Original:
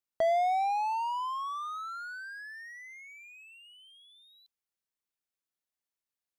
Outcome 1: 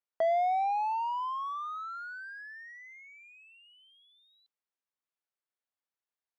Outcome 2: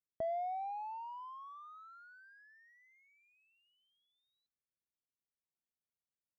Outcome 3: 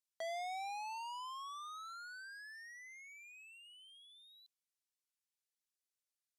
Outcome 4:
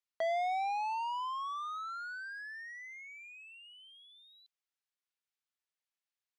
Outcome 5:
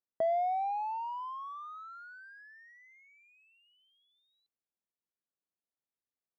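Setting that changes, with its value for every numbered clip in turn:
resonant band-pass, frequency: 980, 110, 7,300, 2,500, 290 Hertz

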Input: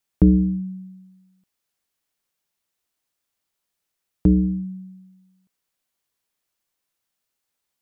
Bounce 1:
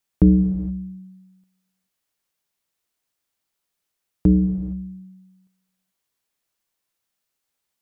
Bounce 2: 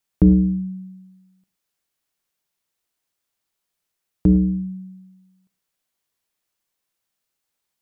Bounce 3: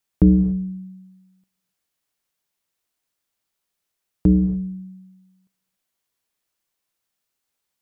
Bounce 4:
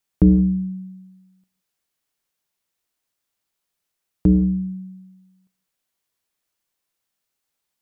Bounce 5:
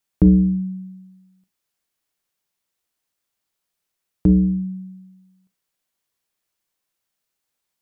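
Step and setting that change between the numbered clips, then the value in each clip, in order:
reverb whose tail is shaped and stops, gate: 490, 130, 310, 200, 80 milliseconds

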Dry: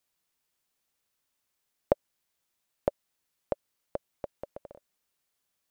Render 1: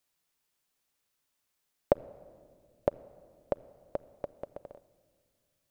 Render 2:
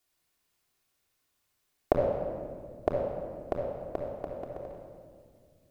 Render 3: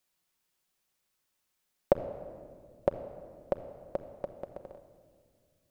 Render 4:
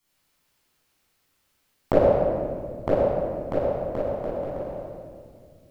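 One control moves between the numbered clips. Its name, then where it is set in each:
rectangular room, microphone at: 0.33, 3.3, 1, 11 metres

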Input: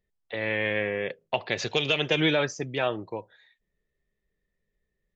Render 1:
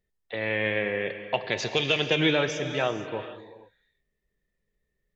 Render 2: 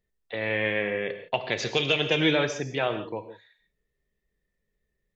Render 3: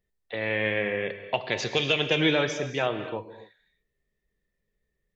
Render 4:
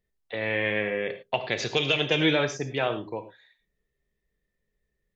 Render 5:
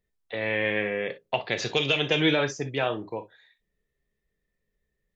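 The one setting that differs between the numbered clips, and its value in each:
reverb whose tail is shaped and stops, gate: 500, 190, 300, 130, 80 milliseconds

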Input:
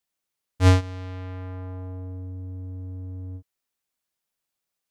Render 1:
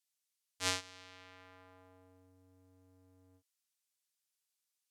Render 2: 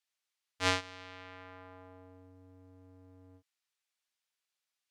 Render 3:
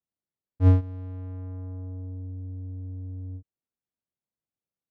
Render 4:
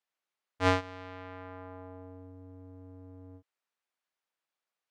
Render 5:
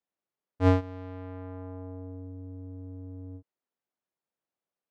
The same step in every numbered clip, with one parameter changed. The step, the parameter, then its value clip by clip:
resonant band-pass, frequency: 7,700, 3,100, 140, 1,200, 410 Hertz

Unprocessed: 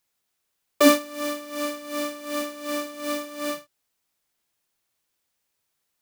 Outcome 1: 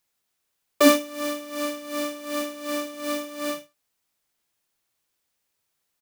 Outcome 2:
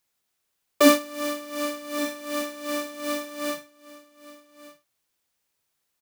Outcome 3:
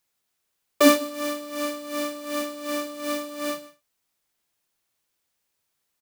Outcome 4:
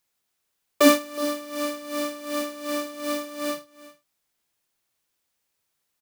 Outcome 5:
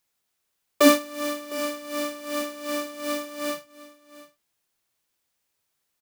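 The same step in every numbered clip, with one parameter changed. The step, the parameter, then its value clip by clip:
single-tap delay, delay time: 78, 1,176, 153, 368, 707 milliseconds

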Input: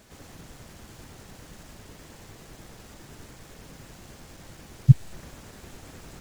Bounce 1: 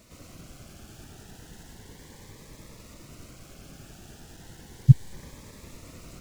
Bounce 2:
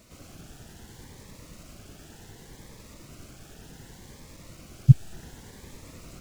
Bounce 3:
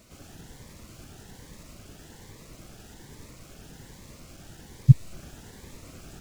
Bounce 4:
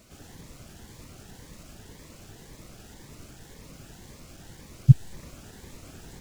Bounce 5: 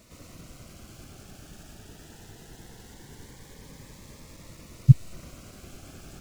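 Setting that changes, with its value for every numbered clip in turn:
phaser whose notches keep moving one way, speed: 0.34, 0.67, 1.2, 1.9, 0.21 Hertz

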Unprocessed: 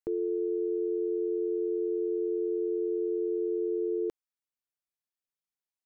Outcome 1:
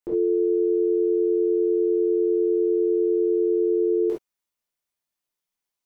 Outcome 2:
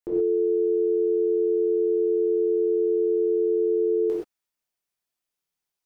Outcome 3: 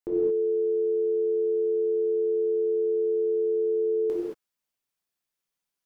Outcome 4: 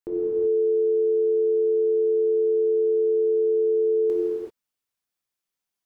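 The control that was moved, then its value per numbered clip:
reverb whose tail is shaped and stops, gate: 90, 150, 250, 410 milliseconds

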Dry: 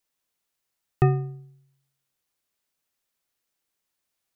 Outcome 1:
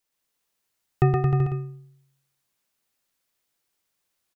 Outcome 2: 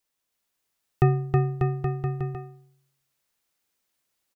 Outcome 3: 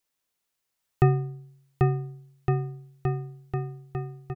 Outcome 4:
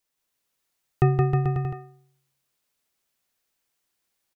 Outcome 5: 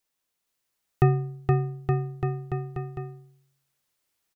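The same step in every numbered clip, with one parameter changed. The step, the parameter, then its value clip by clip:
bouncing-ball delay, first gap: 120, 320, 790, 170, 470 milliseconds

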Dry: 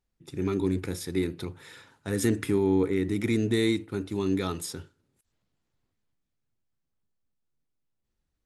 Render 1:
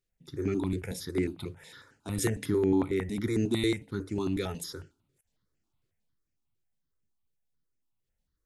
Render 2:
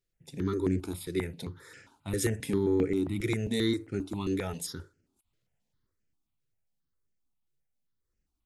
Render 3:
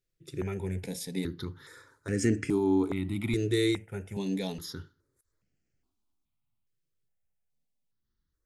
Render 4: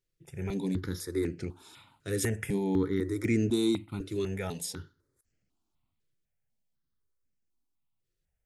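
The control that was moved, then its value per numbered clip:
step-sequenced phaser, speed: 11, 7.5, 2.4, 4 Hertz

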